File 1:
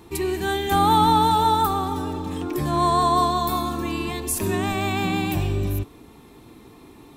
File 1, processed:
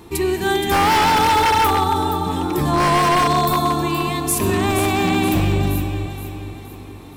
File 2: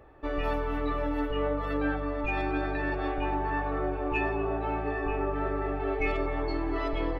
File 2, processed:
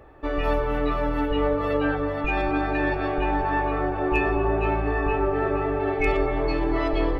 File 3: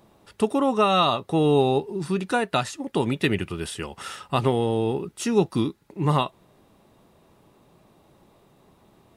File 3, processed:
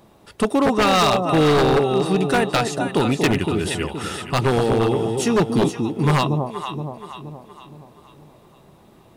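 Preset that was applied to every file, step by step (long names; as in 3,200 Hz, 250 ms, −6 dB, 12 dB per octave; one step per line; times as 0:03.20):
delay that swaps between a low-pass and a high-pass 236 ms, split 820 Hz, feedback 66%, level −5 dB
wave folding −15.5 dBFS
level +5 dB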